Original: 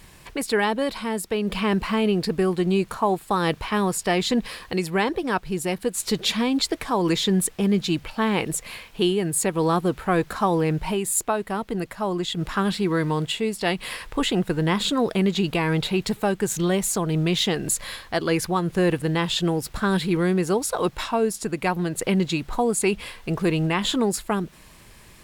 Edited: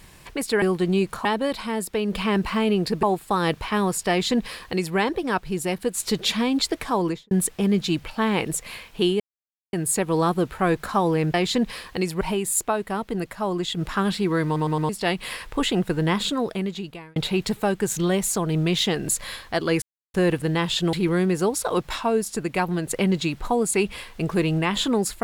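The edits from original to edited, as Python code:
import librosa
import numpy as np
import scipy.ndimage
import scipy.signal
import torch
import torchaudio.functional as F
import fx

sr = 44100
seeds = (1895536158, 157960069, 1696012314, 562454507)

y = fx.studio_fade_out(x, sr, start_s=6.95, length_s=0.36)
y = fx.edit(y, sr, fx.move(start_s=2.4, length_s=0.63, to_s=0.62),
    fx.duplicate(start_s=4.1, length_s=0.87, to_s=10.81),
    fx.insert_silence(at_s=9.2, length_s=0.53),
    fx.stutter_over(start_s=13.05, slice_s=0.11, count=4),
    fx.fade_out_span(start_s=14.7, length_s=1.06),
    fx.silence(start_s=18.42, length_s=0.32),
    fx.cut(start_s=19.53, length_s=0.48), tone=tone)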